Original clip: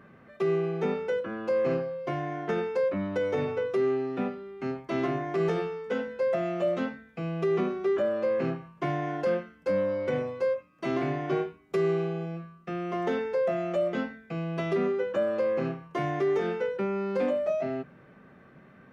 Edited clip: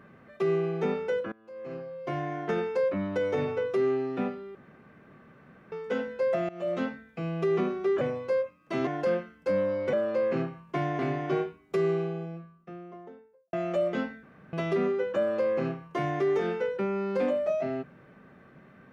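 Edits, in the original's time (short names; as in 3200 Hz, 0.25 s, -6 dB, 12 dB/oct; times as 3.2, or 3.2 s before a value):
1.32–2.17 fade in quadratic, from -23.5 dB
4.55–5.72 room tone
6.49–6.8 fade in, from -18.5 dB
8.01–9.07 swap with 10.13–10.99
11.6–13.53 studio fade out
14.23–14.53 room tone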